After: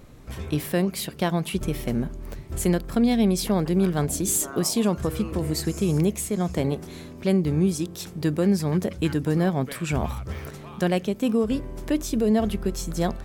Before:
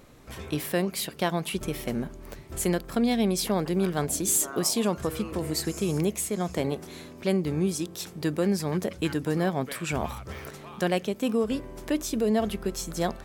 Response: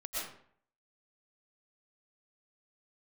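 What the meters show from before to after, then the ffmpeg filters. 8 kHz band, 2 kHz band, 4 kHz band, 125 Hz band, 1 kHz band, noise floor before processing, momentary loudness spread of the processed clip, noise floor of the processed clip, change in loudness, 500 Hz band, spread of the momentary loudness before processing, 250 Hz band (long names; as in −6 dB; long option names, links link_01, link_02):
0.0 dB, 0.0 dB, 0.0 dB, +6.0 dB, +0.5 dB, −45 dBFS, 8 LU, −41 dBFS, +3.0 dB, +2.0 dB, 9 LU, +4.5 dB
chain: -af "lowshelf=frequency=220:gain=9.5"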